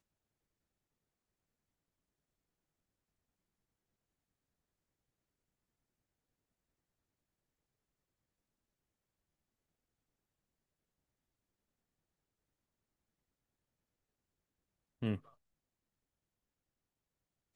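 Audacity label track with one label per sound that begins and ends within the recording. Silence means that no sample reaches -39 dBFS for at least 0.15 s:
15.020000	15.160000	sound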